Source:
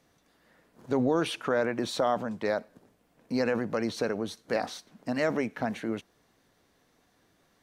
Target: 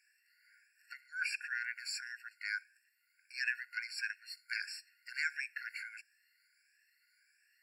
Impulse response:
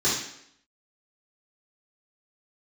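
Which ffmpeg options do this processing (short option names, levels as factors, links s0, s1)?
-af "afftfilt=real='re*pow(10,11/40*sin(2*PI*(1.8*log(max(b,1)*sr/1024/100)/log(2)-(1.5)*(pts-256)/sr)))':imag='im*pow(10,11/40*sin(2*PI*(1.8*log(max(b,1)*sr/1024/100)/log(2)-(1.5)*(pts-256)/sr)))':win_size=1024:overlap=0.75,asubboost=boost=4.5:cutoff=200,afftfilt=real='re*eq(mod(floor(b*sr/1024/1400),2),1)':imag='im*eq(mod(floor(b*sr/1024/1400),2),1)':win_size=1024:overlap=0.75"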